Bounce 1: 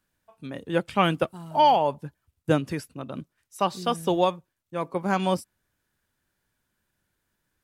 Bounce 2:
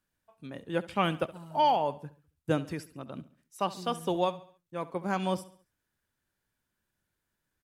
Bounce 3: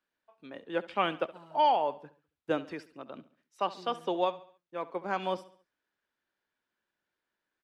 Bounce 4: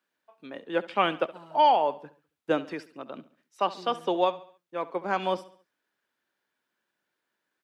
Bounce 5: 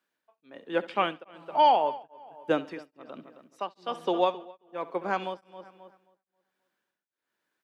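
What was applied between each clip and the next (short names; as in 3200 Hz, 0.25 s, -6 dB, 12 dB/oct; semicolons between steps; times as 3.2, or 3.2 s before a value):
feedback echo 69 ms, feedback 44%, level -17.5 dB; gain -6 dB
three-band isolator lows -19 dB, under 260 Hz, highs -20 dB, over 5000 Hz
HPF 130 Hz; gain +4.5 dB
darkening echo 0.267 s, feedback 31%, low-pass 3300 Hz, level -13 dB; beating tremolo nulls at 1.2 Hz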